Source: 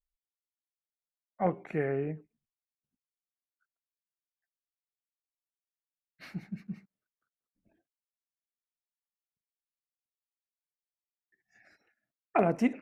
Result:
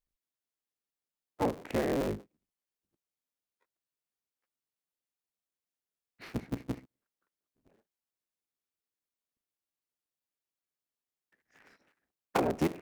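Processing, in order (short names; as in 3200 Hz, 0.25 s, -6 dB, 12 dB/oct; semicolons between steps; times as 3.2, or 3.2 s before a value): cycle switcher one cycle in 3, inverted; bell 320 Hz +5.5 dB 2.1 oct; compressor 4:1, threshold -26 dBFS, peak gain reduction 8.5 dB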